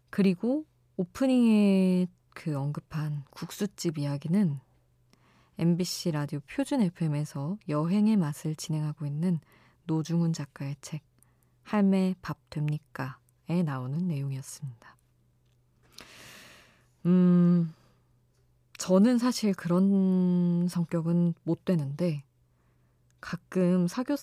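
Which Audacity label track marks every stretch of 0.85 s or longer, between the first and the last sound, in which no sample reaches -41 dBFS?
14.890000	15.990000	silence
17.710000	18.750000	silence
22.200000	23.230000	silence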